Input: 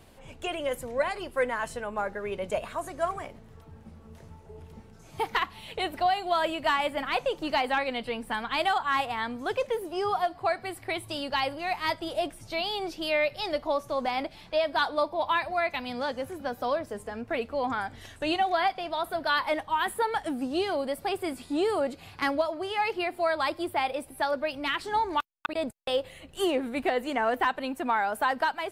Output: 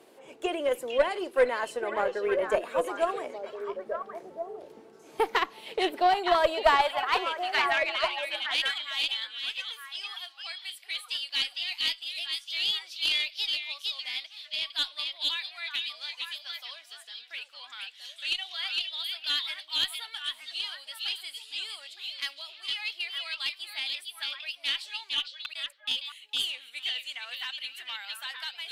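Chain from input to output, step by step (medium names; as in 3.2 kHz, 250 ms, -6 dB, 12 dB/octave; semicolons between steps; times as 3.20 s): high-pass sweep 370 Hz -> 3.2 kHz, 6.22–8.18 s; repeats whose band climbs or falls 458 ms, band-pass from 3.6 kHz, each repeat -1.4 oct, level 0 dB; Chebyshev shaper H 2 -13 dB, 7 -30 dB, 8 -41 dB, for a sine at -9 dBFS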